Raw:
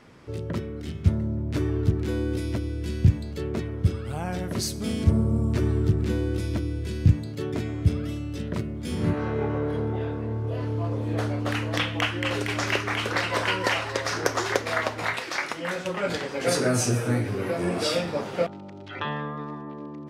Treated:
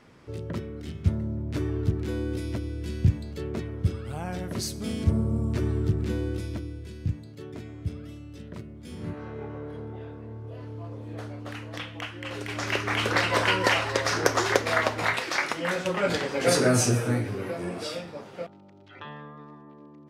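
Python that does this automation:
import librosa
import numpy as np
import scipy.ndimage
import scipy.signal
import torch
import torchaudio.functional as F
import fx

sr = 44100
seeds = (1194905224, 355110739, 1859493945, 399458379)

y = fx.gain(x, sr, db=fx.line((6.28, -3.0), (6.95, -10.5), (12.18, -10.5), (13.04, 2.0), (16.78, 2.0), (18.15, -11.0)))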